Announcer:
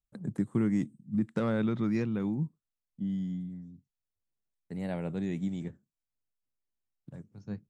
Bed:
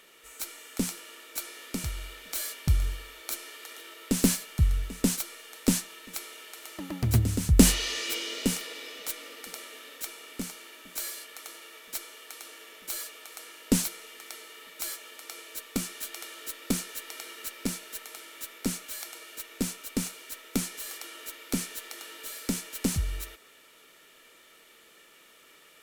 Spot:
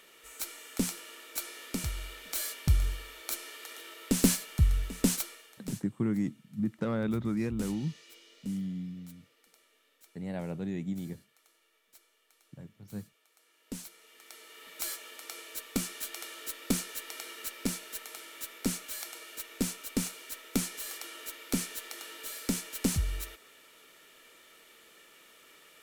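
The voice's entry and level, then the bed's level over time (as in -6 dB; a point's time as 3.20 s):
5.45 s, -2.0 dB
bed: 5.23 s -1 dB
5.91 s -23 dB
13.36 s -23 dB
14.75 s -1 dB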